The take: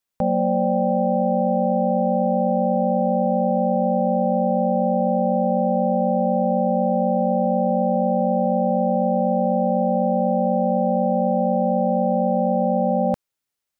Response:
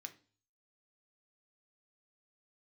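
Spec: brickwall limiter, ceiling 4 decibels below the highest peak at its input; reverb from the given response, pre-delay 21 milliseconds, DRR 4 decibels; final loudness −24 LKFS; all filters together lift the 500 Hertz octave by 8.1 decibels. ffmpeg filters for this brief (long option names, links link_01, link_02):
-filter_complex "[0:a]equalizer=frequency=500:width_type=o:gain=9,alimiter=limit=-8.5dB:level=0:latency=1,asplit=2[link_01][link_02];[1:a]atrim=start_sample=2205,adelay=21[link_03];[link_02][link_03]afir=irnorm=-1:irlink=0,volume=1dB[link_04];[link_01][link_04]amix=inputs=2:normalize=0,volume=-8.5dB"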